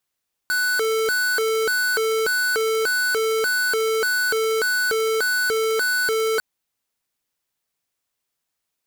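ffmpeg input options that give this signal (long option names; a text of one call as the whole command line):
ffmpeg -f lavfi -i "aevalsrc='0.0891*(2*lt(mod((966.5*t+523.5/1.7*(0.5-abs(mod(1.7*t,1)-0.5))),1),0.5)-1)':duration=5.9:sample_rate=44100" out.wav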